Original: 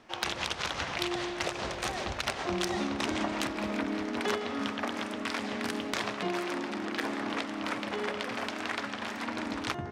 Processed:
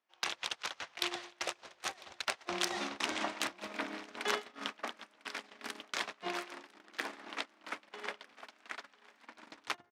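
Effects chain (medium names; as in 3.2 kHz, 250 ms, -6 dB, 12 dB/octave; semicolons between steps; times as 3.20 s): gate -31 dBFS, range -27 dB; high-pass 870 Hz 6 dB/octave; on a send: delay 1000 ms -23 dB; on the sum: trim +1 dB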